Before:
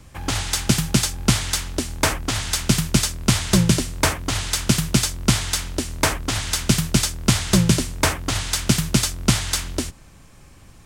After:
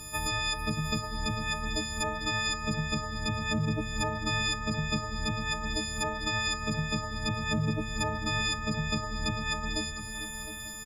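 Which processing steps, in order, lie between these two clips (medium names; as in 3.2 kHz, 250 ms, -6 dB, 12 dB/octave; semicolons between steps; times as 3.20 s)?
partials quantised in pitch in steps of 6 st; low-pass that closes with the level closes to 960 Hz, closed at -7 dBFS; compression 3:1, threshold -28 dBFS, peak gain reduction 12.5 dB; peak limiter -20 dBFS, peak gain reduction 7 dB; feedback delay 709 ms, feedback 24%, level -11 dB; bit-crushed delay 446 ms, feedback 55%, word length 10-bit, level -11.5 dB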